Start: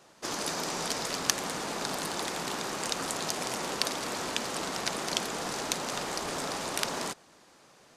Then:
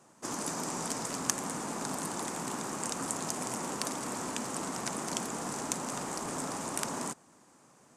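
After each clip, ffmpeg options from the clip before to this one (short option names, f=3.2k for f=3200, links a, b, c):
-af "equalizer=f=125:t=o:w=1:g=7,equalizer=f=250:t=o:w=1:g=9,equalizer=f=1k:t=o:w=1:g=6,equalizer=f=4k:t=o:w=1:g=-7,equalizer=f=8k:t=o:w=1:g=11,volume=-7.5dB"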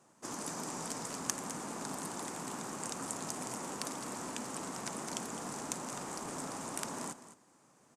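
-af "aecho=1:1:210:0.211,volume=-5dB"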